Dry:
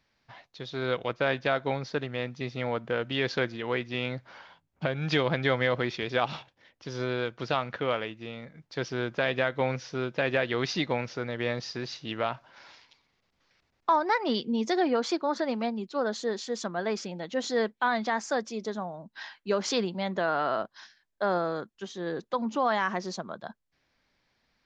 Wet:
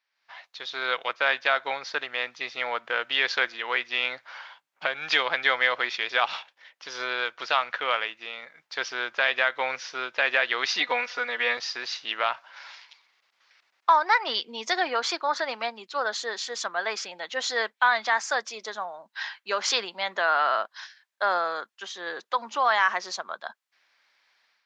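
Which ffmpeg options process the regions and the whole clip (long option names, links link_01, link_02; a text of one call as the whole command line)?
ffmpeg -i in.wav -filter_complex "[0:a]asettb=1/sr,asplit=3[link_01][link_02][link_03];[link_01]atrim=end=10.804[link_04];[link_02]atrim=start=10.8:end=11.57,asetpts=PTS-STARTPTS,afade=type=in:duration=0.004:curve=qsin,afade=type=out:start_time=0.766:duration=0.004:curve=qsin,acrossover=split=4100[link_05][link_06];[link_06]acompressor=threshold=-52dB:ratio=4:attack=1:release=60[link_07];[link_05][link_07]amix=inputs=2:normalize=0,aecho=1:1:4.1:0.83,atrim=end_sample=33957[link_08];[link_03]atrim=start=11.566[link_09];[link_04][link_08]acrossfade=duration=0.004:curve1=hsin:curve2=qsin[link_10];[link_10][link_09]acrossfade=duration=0.004:curve1=qsin:curve2=hsin,highpass=1100,highshelf=frequency=5100:gain=-6.5,dynaudnorm=framelen=110:gausssize=5:maxgain=14.5dB,volume=-4.5dB" out.wav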